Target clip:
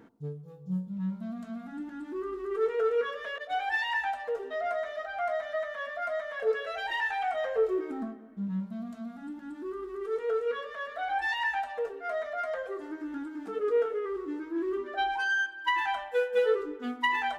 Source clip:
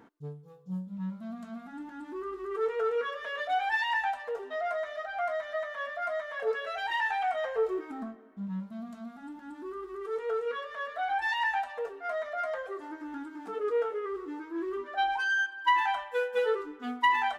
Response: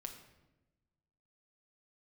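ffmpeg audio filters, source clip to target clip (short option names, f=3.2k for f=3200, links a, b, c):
-filter_complex "[0:a]asettb=1/sr,asplit=3[a][b][c];[a]atrim=end=3.384[d];[b]atrim=start=3.38:end=3.85,asetpts=PTS-STARTPTS,afade=t=in:d=0.004:c=qsin,afade=t=out:st=0.466:d=0.004:c=qsin,agate=range=-33dB:threshold=-28dB:ratio=3:detection=peak[e];[c]atrim=start=3.846[f];[d][e]acrossfade=d=0.004:c1=hsin:c2=qsin[g];[g][f]acrossfade=d=0.004:c1=qsin:c2=hsin,asplit=2[h][i];[i]lowpass=f=1k:w=0.5412,lowpass=f=1k:w=1.3066[j];[1:a]atrim=start_sample=2205[k];[j][k]afir=irnorm=-1:irlink=0,volume=0dB[l];[h][l]amix=inputs=2:normalize=0"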